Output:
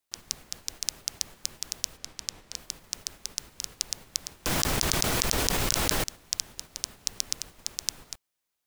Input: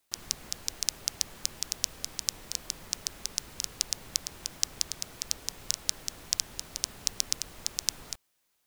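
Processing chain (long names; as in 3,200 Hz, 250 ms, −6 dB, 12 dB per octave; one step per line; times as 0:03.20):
noise gate −45 dBFS, range −7 dB
0:01.97–0:02.56: high-shelf EQ 8,900 Hz −10 dB
0:04.46–0:06.04: envelope flattener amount 100%
level −1 dB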